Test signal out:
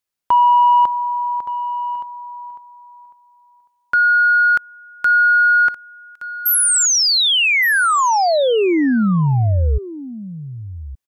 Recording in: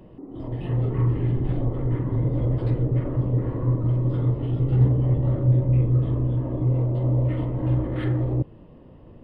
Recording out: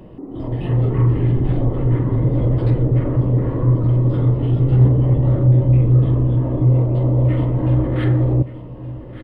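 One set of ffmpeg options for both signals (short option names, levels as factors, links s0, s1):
-filter_complex "[0:a]asoftclip=type=tanh:threshold=0.282,asplit=2[s0][s1];[s1]aecho=0:1:1170:0.178[s2];[s0][s2]amix=inputs=2:normalize=0,volume=2.24"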